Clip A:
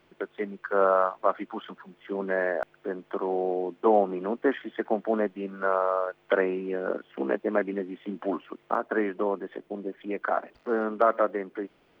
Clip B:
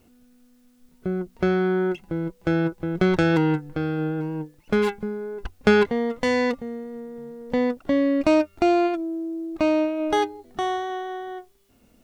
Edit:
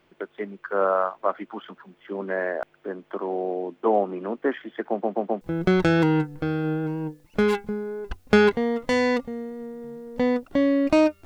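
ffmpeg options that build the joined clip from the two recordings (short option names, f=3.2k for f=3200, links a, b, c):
-filter_complex "[0:a]apad=whole_dur=11.25,atrim=end=11.25,asplit=4[a][b][c][d];[a]atrim=end=5.022[e];[b]atrim=start=4.888:end=5.022[f];[c]atrim=start=4.888:end=5.022[g];[d]atrim=start=4.888:end=5.022[h];[1:a]atrim=start=2.748:end=8.59[i];[e][f]acrossfade=d=0.004:c1=hsin:c2=hsin[j];[j][g]acrossfade=d=0.004:c1=hsin:c2=hsin[k];[k][h]acrossfade=d=0.004:c1=hsin:c2=hsin[l];[l][i]acrossfade=d=0.004:c1=hsin:c2=hsin"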